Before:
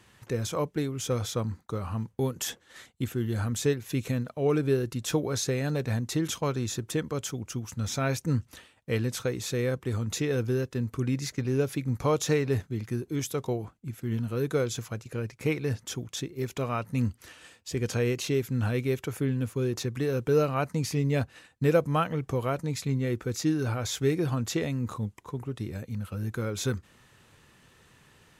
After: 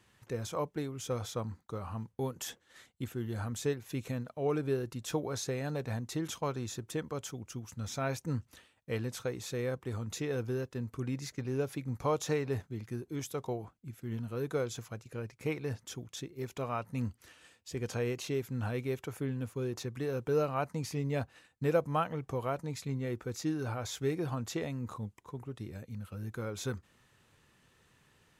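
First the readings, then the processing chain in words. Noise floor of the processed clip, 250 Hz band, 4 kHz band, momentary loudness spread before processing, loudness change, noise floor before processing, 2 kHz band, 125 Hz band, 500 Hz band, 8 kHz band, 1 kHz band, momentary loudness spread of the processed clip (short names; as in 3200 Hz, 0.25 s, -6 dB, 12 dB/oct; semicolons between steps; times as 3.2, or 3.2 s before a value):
-69 dBFS, -7.5 dB, -8.0 dB, 9 LU, -7.0 dB, -61 dBFS, -6.5 dB, -8.0 dB, -6.0 dB, -8.0 dB, -3.5 dB, 10 LU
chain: dynamic EQ 830 Hz, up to +6 dB, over -44 dBFS, Q 1.1; gain -8 dB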